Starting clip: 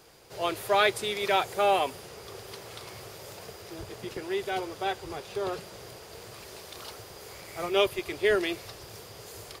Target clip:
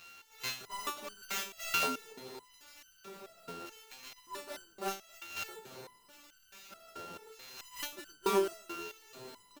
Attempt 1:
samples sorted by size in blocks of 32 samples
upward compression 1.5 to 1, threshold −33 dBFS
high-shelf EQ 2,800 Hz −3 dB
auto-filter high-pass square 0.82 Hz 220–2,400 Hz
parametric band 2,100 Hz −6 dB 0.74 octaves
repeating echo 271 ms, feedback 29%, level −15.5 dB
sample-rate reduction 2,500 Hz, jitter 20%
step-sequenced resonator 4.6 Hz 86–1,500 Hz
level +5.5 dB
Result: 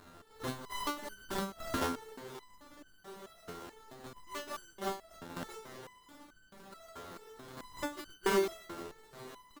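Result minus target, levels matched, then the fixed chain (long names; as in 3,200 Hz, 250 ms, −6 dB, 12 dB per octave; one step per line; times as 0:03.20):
sample-rate reduction: distortion +7 dB
samples sorted by size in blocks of 32 samples
upward compression 1.5 to 1, threshold −33 dBFS
high-shelf EQ 2,800 Hz −3 dB
auto-filter high-pass square 0.82 Hz 220–2,400 Hz
parametric band 2,100 Hz −6 dB 0.74 octaves
repeating echo 271 ms, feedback 29%, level −15.5 dB
sample-rate reduction 9,300 Hz, jitter 20%
step-sequenced resonator 4.6 Hz 86–1,500 Hz
level +5.5 dB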